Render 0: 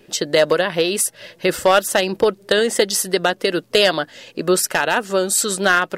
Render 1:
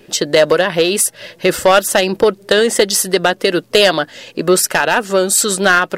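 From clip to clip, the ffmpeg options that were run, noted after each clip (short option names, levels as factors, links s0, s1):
-af "acontrast=36"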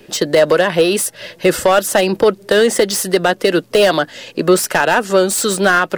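-filter_complex "[0:a]acrossover=split=260|1500[s0][s1][s2];[s2]asoftclip=type=tanh:threshold=0.141[s3];[s0][s1][s3]amix=inputs=3:normalize=0,alimiter=level_in=1.33:limit=0.891:release=50:level=0:latency=1,volume=0.891"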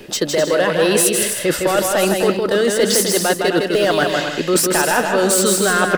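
-af "areverse,acompressor=threshold=0.1:ratio=10,areverse,aecho=1:1:160|256|313.6|348.2|368.9:0.631|0.398|0.251|0.158|0.1,volume=2"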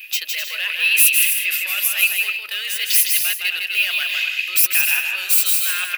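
-af "aexciter=amount=8.9:drive=3.1:freq=11000,highpass=f=2500:t=q:w=11,volume=0.501"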